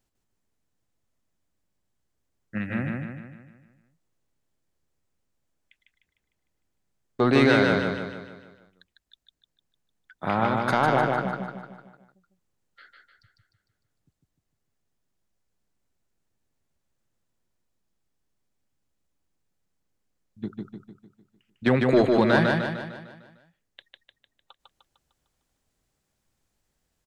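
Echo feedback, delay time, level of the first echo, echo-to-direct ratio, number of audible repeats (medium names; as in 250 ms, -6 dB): 50%, 151 ms, -3.0 dB, -1.5 dB, 6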